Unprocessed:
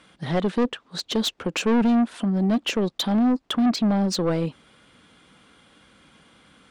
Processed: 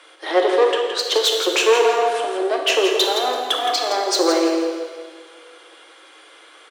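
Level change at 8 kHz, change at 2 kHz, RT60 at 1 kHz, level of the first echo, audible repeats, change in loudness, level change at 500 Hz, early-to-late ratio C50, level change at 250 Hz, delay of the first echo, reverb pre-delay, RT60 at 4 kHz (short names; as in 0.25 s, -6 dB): +10.0 dB, +10.0 dB, 1.7 s, -8.0 dB, 1, +5.0 dB, +10.5 dB, 2.0 dB, -5.5 dB, 0.167 s, 10 ms, 1.6 s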